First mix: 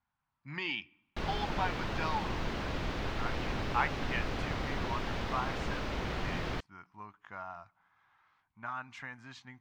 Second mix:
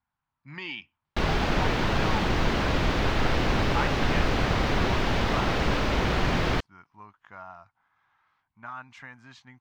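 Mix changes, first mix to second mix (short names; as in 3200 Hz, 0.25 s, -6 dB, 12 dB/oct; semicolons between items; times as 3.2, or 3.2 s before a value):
background +11.0 dB; reverb: off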